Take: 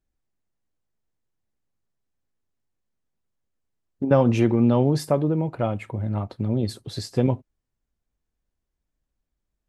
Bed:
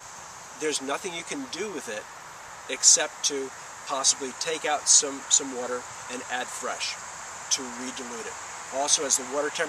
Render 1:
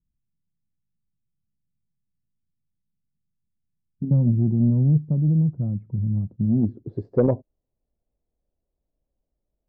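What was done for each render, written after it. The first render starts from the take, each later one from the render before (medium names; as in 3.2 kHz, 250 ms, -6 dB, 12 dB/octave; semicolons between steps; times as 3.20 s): low-pass sweep 170 Hz -> 600 Hz, 6.33–7.34 s; saturation -8.5 dBFS, distortion -23 dB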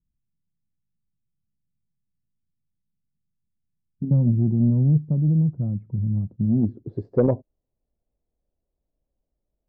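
no audible change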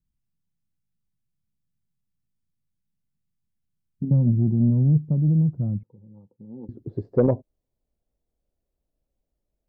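4.12–5.05 s: distance through air 340 m; 5.83–6.69 s: two resonant band-passes 660 Hz, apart 0.8 oct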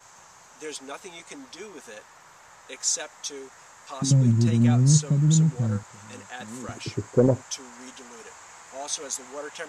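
add bed -8.5 dB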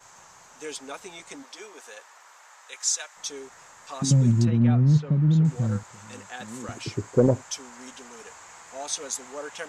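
1.42–3.15 s: high-pass 380 Hz -> 990 Hz; 4.45–5.45 s: distance through air 340 m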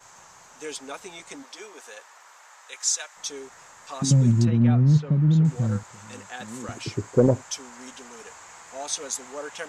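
trim +1 dB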